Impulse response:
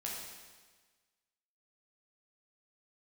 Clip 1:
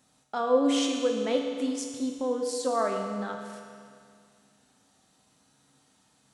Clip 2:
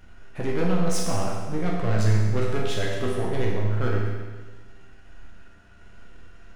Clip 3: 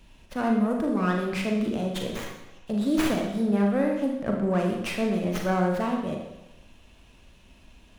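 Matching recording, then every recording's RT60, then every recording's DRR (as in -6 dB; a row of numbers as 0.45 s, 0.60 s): 2; 2.2 s, 1.4 s, 0.95 s; 1.5 dB, -4.0 dB, 0.5 dB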